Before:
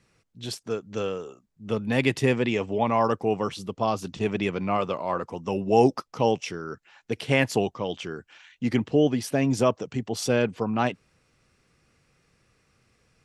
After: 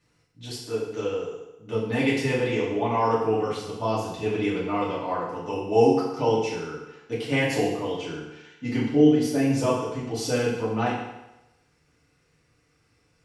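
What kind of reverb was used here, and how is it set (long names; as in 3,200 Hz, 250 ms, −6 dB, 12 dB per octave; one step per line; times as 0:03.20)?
feedback delay network reverb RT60 0.97 s, low-frequency decay 0.85×, high-frequency decay 0.9×, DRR −7.5 dB
level −8.5 dB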